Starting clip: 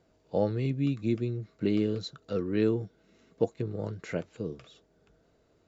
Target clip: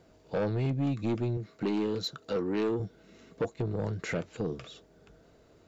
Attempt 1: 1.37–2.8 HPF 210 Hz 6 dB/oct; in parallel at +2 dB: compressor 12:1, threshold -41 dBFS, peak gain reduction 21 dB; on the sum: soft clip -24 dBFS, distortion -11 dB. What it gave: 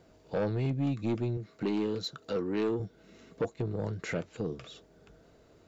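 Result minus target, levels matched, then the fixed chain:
compressor: peak gain reduction +7 dB
1.37–2.8 HPF 210 Hz 6 dB/oct; in parallel at +2 dB: compressor 12:1, threshold -33.5 dBFS, peak gain reduction 14.5 dB; on the sum: soft clip -24 dBFS, distortion -10 dB

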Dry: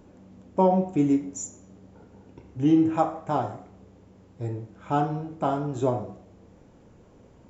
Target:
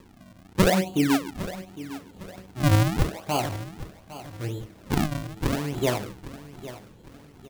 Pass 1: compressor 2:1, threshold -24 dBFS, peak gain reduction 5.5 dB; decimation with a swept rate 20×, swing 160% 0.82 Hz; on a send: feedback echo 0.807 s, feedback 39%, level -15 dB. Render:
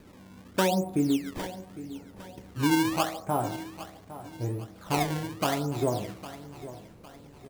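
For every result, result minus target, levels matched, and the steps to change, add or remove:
decimation with a swept rate: distortion -12 dB; compressor: peak gain reduction +5.5 dB
change: decimation with a swept rate 58×, swing 160% 0.82 Hz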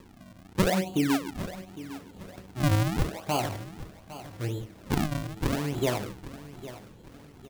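compressor: peak gain reduction +5.5 dB
remove: compressor 2:1, threshold -24 dBFS, peak gain reduction 5.5 dB

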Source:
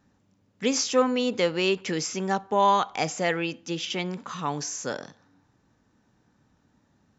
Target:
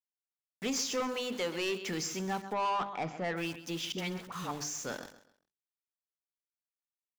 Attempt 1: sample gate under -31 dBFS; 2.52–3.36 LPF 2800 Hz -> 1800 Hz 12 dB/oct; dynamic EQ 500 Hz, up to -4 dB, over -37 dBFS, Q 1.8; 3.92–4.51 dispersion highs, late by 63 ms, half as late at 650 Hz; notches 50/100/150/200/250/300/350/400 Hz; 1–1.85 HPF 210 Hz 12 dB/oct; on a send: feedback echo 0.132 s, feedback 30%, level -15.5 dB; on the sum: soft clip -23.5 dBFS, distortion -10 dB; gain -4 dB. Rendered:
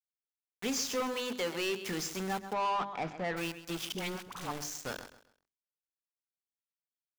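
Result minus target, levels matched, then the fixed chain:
sample gate: distortion +10 dB
sample gate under -39.5 dBFS; 2.52–3.36 LPF 2800 Hz -> 1800 Hz 12 dB/oct; dynamic EQ 500 Hz, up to -4 dB, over -37 dBFS, Q 1.8; 3.92–4.51 dispersion highs, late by 63 ms, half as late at 650 Hz; notches 50/100/150/200/250/300/350/400 Hz; 1–1.85 HPF 210 Hz 12 dB/oct; on a send: feedback echo 0.132 s, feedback 30%, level -15.5 dB; on the sum: soft clip -23.5 dBFS, distortion -10 dB; gain -4 dB

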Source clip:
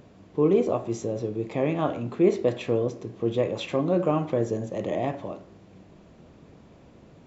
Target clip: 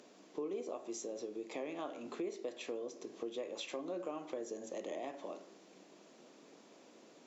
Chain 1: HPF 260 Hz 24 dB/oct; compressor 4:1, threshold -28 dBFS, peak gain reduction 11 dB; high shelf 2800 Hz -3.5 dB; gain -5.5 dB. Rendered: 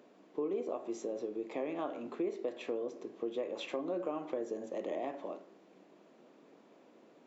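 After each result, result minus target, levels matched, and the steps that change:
8000 Hz band -12.0 dB; compressor: peak gain reduction -5 dB
add after HPF: bell 6400 Hz +14 dB 1.8 oct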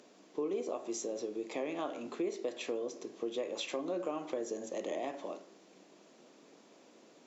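compressor: peak gain reduction -5 dB
change: compressor 4:1, threshold -34.5 dBFS, peak gain reduction 16 dB

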